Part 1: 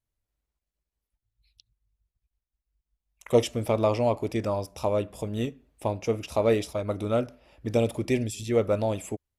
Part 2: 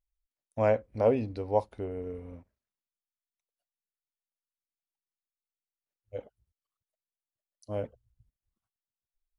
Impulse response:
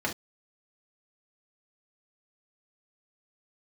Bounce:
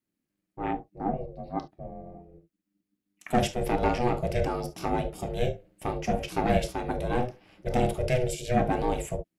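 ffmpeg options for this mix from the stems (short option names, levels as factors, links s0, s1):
-filter_complex "[0:a]asoftclip=type=tanh:threshold=0.15,volume=1.06,asplit=2[s0][s1];[s1]volume=0.501[s2];[1:a]afwtdn=0.0158,flanger=delay=0.4:depth=8.7:regen=-73:speed=1.2:shape=triangular,volume=1.19,asplit=2[s3][s4];[s4]volume=0.299[s5];[2:a]atrim=start_sample=2205[s6];[s2][s5]amix=inputs=2:normalize=0[s7];[s7][s6]afir=irnorm=-1:irlink=0[s8];[s0][s3][s8]amix=inputs=3:normalize=0,equalizer=f=730:w=2.4:g=-12,aeval=exprs='val(0)*sin(2*PI*250*n/s)':c=same"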